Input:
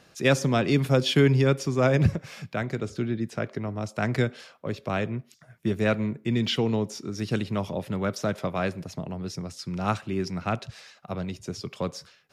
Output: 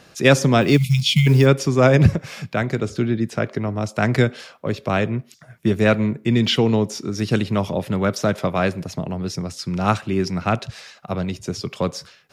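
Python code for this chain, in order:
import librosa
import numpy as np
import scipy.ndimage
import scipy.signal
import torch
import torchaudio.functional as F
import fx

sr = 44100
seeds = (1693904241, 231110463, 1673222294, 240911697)

y = fx.spec_erase(x, sr, start_s=0.77, length_s=0.5, low_hz=220.0, high_hz=2000.0)
y = fx.quant_float(y, sr, bits=4, at=(0.61, 1.46))
y = y * 10.0 ** (7.5 / 20.0)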